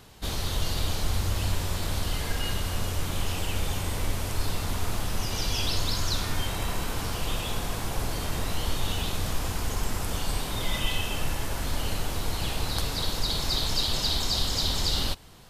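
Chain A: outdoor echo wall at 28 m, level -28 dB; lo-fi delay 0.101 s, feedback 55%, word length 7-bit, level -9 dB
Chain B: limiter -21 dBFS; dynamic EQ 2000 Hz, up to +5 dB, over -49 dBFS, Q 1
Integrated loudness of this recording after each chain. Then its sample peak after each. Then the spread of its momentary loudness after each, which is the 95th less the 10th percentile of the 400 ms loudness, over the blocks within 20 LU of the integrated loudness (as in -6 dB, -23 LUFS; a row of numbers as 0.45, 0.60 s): -29.0, -31.0 LUFS; -10.0, -18.5 dBFS; 6, 4 LU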